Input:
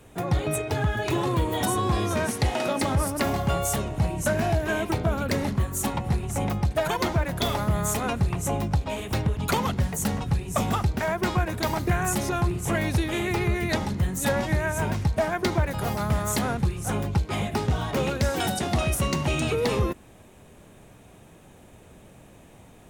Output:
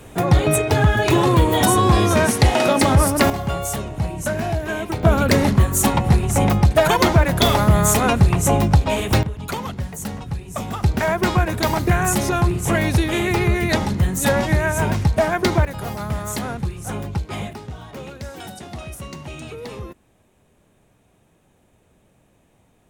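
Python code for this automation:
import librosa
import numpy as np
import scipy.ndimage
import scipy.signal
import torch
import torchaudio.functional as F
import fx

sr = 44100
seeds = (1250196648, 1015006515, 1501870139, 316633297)

y = fx.gain(x, sr, db=fx.steps((0.0, 9.5), (3.3, 1.0), (5.03, 10.0), (9.23, -2.5), (10.83, 6.5), (15.65, -0.5), (17.53, -9.0)))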